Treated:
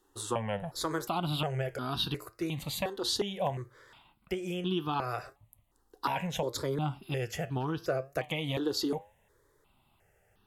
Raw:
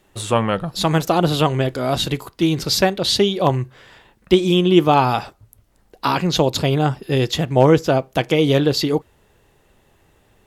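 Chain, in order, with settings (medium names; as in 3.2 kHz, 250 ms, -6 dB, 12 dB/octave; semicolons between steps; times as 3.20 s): flange 0.73 Hz, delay 6.4 ms, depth 4.3 ms, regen +82%; compression, threshold -20 dBFS, peak gain reduction 8 dB; bass shelf 140 Hz -5.5 dB; stepped phaser 2.8 Hz 620–2100 Hz; trim -3 dB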